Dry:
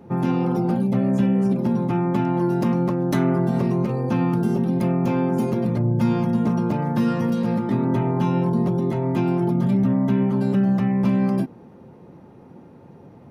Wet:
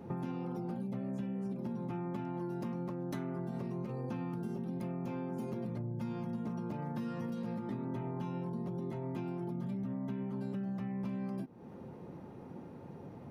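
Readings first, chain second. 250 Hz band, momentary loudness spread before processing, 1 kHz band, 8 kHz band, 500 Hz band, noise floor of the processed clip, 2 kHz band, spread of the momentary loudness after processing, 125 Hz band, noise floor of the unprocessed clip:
-18.0 dB, 3 LU, -17.5 dB, n/a, -17.5 dB, -50 dBFS, -17.5 dB, 11 LU, -17.5 dB, -46 dBFS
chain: compressor, threshold -34 dBFS, peak gain reduction 17 dB; gain -3 dB

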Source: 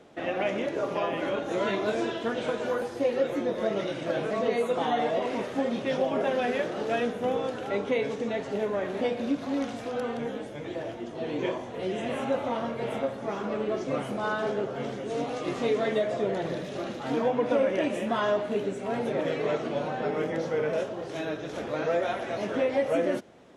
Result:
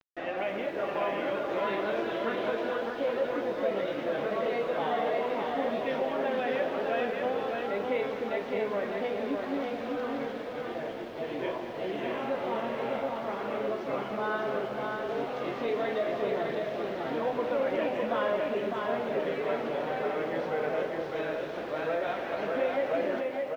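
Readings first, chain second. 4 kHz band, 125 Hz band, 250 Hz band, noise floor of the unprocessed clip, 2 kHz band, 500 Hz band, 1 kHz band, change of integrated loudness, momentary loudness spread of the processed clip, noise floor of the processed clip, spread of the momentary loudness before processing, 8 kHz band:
-3.0 dB, -7.0 dB, -4.5 dB, -38 dBFS, -0.5 dB, -2.0 dB, -0.5 dB, -2.0 dB, 4 LU, -37 dBFS, 7 LU, under -10 dB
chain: low shelf 300 Hz -12 dB; resonator 200 Hz, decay 0.46 s, harmonics all, mix 30%; in parallel at +1.5 dB: limiter -26.5 dBFS, peak gain reduction 6.5 dB; on the sum: bit-crush 7-bit; air absorption 260 m; on a send: echo 0.606 s -3.5 dB; on the sum: lo-fi delay 0.211 s, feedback 55%, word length 9-bit, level -11.5 dB; gain -3 dB

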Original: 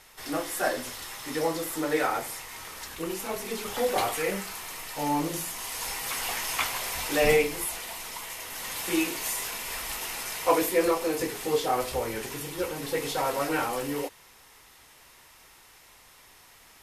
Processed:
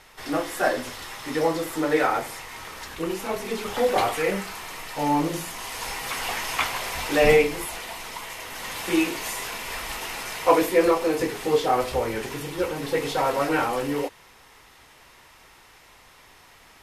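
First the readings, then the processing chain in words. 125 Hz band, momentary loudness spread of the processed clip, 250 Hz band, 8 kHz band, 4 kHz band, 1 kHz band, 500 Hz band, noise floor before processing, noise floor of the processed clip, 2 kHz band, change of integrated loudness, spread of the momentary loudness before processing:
+5.0 dB, 14 LU, +5.0 dB, -2.0 dB, +2.0 dB, +4.5 dB, +5.0 dB, -55 dBFS, -52 dBFS, +4.0 dB, +4.0 dB, 11 LU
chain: high shelf 5800 Hz -10.5 dB; gain +5 dB

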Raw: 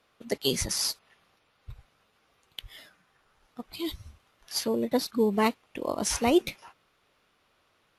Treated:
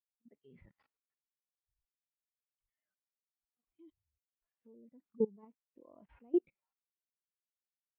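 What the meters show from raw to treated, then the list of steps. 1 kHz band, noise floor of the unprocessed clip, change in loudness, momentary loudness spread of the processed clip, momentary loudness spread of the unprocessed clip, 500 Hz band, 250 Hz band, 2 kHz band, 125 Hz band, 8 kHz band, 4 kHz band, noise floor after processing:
-32.5 dB, -70 dBFS, -8.0 dB, 2 LU, 19 LU, -11.5 dB, -12.5 dB, under -35 dB, -19.0 dB, under -40 dB, under -40 dB, under -85 dBFS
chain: resonant high shelf 4000 Hz -14 dB, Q 1.5; harmonic-percussive split percussive -10 dB; level quantiser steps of 22 dB; air absorption 360 m; spectral expander 1.5:1; gain -3.5 dB

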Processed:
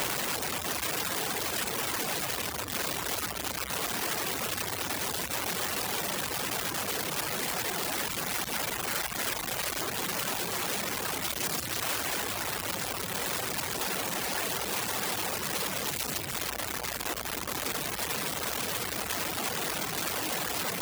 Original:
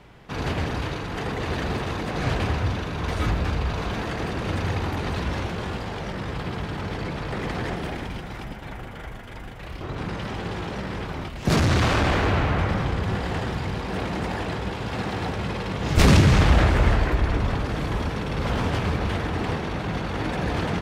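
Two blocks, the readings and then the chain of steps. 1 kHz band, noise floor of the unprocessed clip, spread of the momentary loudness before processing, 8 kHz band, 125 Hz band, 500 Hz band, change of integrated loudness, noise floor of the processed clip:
-5.5 dB, -37 dBFS, 12 LU, +10.0 dB, -20.5 dB, -8.0 dB, -5.0 dB, -36 dBFS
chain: infinite clipping; reverb removal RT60 0.76 s; HPF 400 Hz 6 dB/oct; high shelf 6600 Hz +9.5 dB; gain -5 dB

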